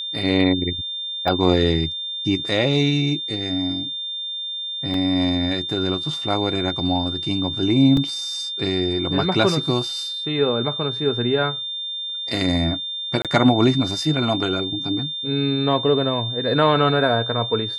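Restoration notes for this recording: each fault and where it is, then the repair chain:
tone 3600 Hz -26 dBFS
1.28 gap 3.1 ms
4.94 gap 2.4 ms
7.97 gap 2.4 ms
13.22–13.25 gap 27 ms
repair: notch 3600 Hz, Q 30; interpolate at 1.28, 3.1 ms; interpolate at 4.94, 2.4 ms; interpolate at 7.97, 2.4 ms; interpolate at 13.22, 27 ms

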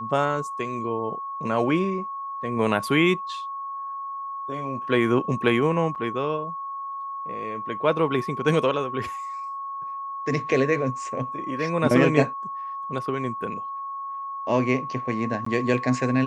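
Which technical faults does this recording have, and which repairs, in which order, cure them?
tone 1100 Hz -30 dBFS
5.95–5.96 gap 7.3 ms
15.45–15.46 gap 14 ms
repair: notch 1100 Hz, Q 30; interpolate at 5.95, 7.3 ms; interpolate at 15.45, 14 ms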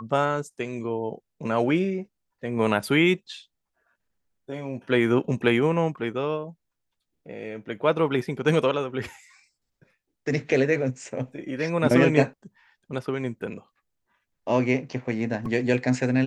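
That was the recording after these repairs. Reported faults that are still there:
none

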